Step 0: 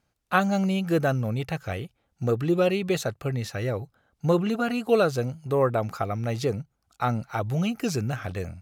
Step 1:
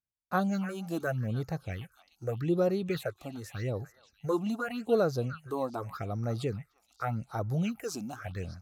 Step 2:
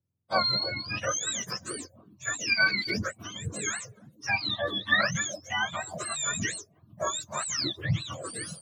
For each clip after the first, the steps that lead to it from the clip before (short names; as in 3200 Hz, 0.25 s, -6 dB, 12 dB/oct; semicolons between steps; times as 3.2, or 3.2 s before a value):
delay with a stepping band-pass 0.296 s, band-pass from 1500 Hz, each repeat 1.4 oct, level -9.5 dB; phaser stages 6, 0.84 Hz, lowest notch 110–3000 Hz; gate with hold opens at -52 dBFS; gain -5 dB
spectrum mirrored in octaves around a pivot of 910 Hz; gain +6 dB